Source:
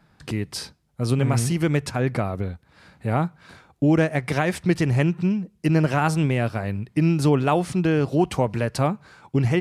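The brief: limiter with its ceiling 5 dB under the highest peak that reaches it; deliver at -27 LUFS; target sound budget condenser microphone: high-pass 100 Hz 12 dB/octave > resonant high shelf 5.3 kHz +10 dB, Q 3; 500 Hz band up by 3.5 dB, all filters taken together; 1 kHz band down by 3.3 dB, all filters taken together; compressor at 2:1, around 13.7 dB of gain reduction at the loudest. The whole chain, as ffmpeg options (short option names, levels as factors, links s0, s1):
-af "equalizer=f=500:t=o:g=6.5,equalizer=f=1000:t=o:g=-8,acompressor=threshold=0.0112:ratio=2,alimiter=limit=0.0631:level=0:latency=1,highpass=100,highshelf=f=5300:t=q:w=3:g=10,volume=2.24"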